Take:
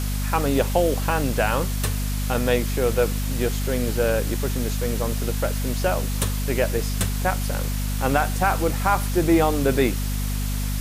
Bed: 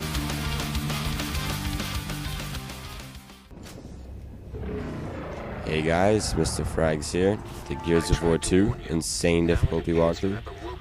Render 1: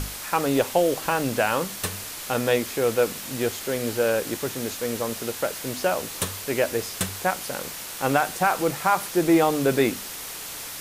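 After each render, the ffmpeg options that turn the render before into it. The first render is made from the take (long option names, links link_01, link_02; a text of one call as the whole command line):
ffmpeg -i in.wav -af "bandreject=frequency=50:width_type=h:width=6,bandreject=frequency=100:width_type=h:width=6,bandreject=frequency=150:width_type=h:width=6,bandreject=frequency=200:width_type=h:width=6,bandreject=frequency=250:width_type=h:width=6" out.wav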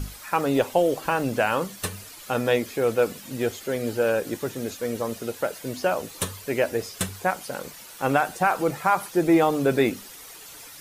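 ffmpeg -i in.wav -af "afftdn=noise_reduction=11:noise_floor=-36" out.wav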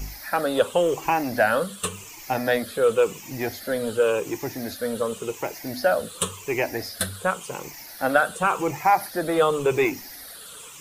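ffmpeg -i in.wav -filter_complex "[0:a]afftfilt=real='re*pow(10,12/40*sin(2*PI*(0.72*log(max(b,1)*sr/1024/100)/log(2)-(-0.91)*(pts-256)/sr)))':imag='im*pow(10,12/40*sin(2*PI*(0.72*log(max(b,1)*sr/1024/100)/log(2)-(-0.91)*(pts-256)/sr)))':win_size=1024:overlap=0.75,acrossover=split=400|1100|2800[link_01][link_02][link_03][link_04];[link_01]asoftclip=type=tanh:threshold=-29dB[link_05];[link_05][link_02][link_03][link_04]amix=inputs=4:normalize=0" out.wav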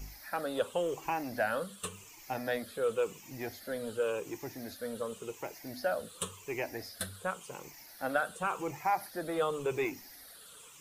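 ffmpeg -i in.wav -af "volume=-11.5dB" out.wav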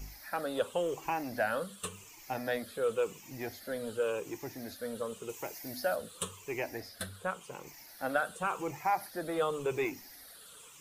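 ffmpeg -i in.wav -filter_complex "[0:a]asettb=1/sr,asplit=3[link_01][link_02][link_03];[link_01]atrim=end=5.294[link_04];[link_02]atrim=start=5.29:end=5.96,asetpts=PTS-STARTPTS,afade=type=in:duration=0.004:curve=qsin,afade=type=out:start_time=0.666:duration=0.004:curve=qsin,highshelf=frequency=5600:gain=7.5[link_05];[link_03]atrim=start=5.956[link_06];[link_04][link_05]acrossfade=duration=0.004:curve1=hsin:curve2=qsin[link_07];[link_07][link_06]acrossfade=duration=0.004:curve1=qsin:curve2=hsin,asettb=1/sr,asplit=3[link_08][link_09][link_10];[link_08]atrim=end=6.804[link_11];[link_09]atrim=start=6.8:end=7.67,asetpts=PTS-STARTPTS,afade=type=in:duration=0.004:curve=qsin,afade=type=out:start_time=0.866:duration=0.004:curve=qsin,bass=frequency=250:gain=0,treble=frequency=4000:gain=-4[link_12];[link_10]atrim=start=7.666[link_13];[link_11][link_12]acrossfade=duration=0.004:curve1=hsin:curve2=qsin[link_14];[link_14][link_13]acrossfade=duration=0.004:curve1=qsin:curve2=hsin" out.wav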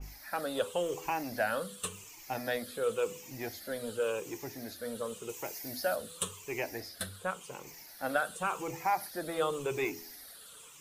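ffmpeg -i in.wav -af "bandreject=frequency=83.03:width_type=h:width=4,bandreject=frequency=166.06:width_type=h:width=4,bandreject=frequency=249.09:width_type=h:width=4,bandreject=frequency=332.12:width_type=h:width=4,bandreject=frequency=415.15:width_type=h:width=4,bandreject=frequency=498.18:width_type=h:width=4,adynamicequalizer=threshold=0.00398:dfrequency=2700:dqfactor=0.7:tfrequency=2700:tqfactor=0.7:attack=5:release=100:ratio=0.375:range=2:mode=boostabove:tftype=highshelf" out.wav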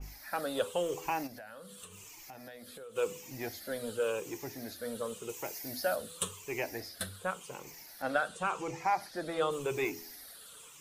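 ffmpeg -i in.wav -filter_complex "[0:a]asplit=3[link_01][link_02][link_03];[link_01]afade=type=out:start_time=1.26:duration=0.02[link_04];[link_02]acompressor=threshold=-46dB:ratio=6:attack=3.2:release=140:knee=1:detection=peak,afade=type=in:start_time=1.26:duration=0.02,afade=type=out:start_time=2.95:duration=0.02[link_05];[link_03]afade=type=in:start_time=2.95:duration=0.02[link_06];[link_04][link_05][link_06]amix=inputs=3:normalize=0,asettb=1/sr,asplit=3[link_07][link_08][link_09];[link_07]atrim=end=8.024[link_10];[link_08]atrim=start=8.02:end=9.51,asetpts=PTS-STARTPTS,afade=type=in:duration=0.004:curve=qsin,afade=type=out:start_time=1.486:duration=0.004:curve=qsin,lowpass=7400[link_11];[link_09]atrim=start=9.506[link_12];[link_10][link_11]acrossfade=duration=0.004:curve1=hsin:curve2=qsin[link_13];[link_13][link_12]acrossfade=duration=0.004:curve1=qsin:curve2=hsin" out.wav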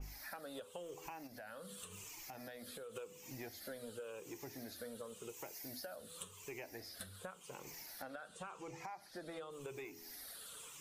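ffmpeg -i in.wav -af "alimiter=level_in=2.5dB:limit=-24dB:level=0:latency=1:release=451,volume=-2.5dB,acompressor=threshold=-46dB:ratio=6" out.wav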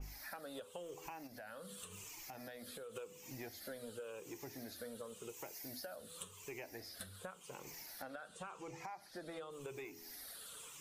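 ffmpeg -i in.wav -af anull out.wav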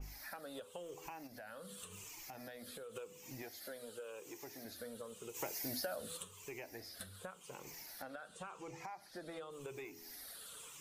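ffmpeg -i in.wav -filter_complex "[0:a]asettb=1/sr,asplit=3[link_01][link_02][link_03];[link_01]atrim=end=3.424[link_04];[link_02]atrim=start=3.42:end=4.65,asetpts=PTS-STARTPTS,afade=type=in:duration=0.004:curve=qsin,afade=type=out:start_time=1.226:duration=0.004:curve=qsin,bass=frequency=250:gain=-9,treble=frequency=4000:gain=1[link_05];[link_03]atrim=start=4.646[link_06];[link_04][link_05]acrossfade=duration=0.004:curve1=hsin:curve2=qsin[link_07];[link_07][link_06]acrossfade=duration=0.004:curve1=qsin:curve2=hsin,asplit=3[link_08][link_09][link_10];[link_08]afade=type=out:start_time=5.34:duration=0.02[link_11];[link_09]acontrast=86,afade=type=in:start_time=5.34:duration=0.02,afade=type=out:start_time=6.16:duration=0.02[link_12];[link_10]afade=type=in:start_time=6.16:duration=0.02[link_13];[link_11][link_12][link_13]amix=inputs=3:normalize=0" out.wav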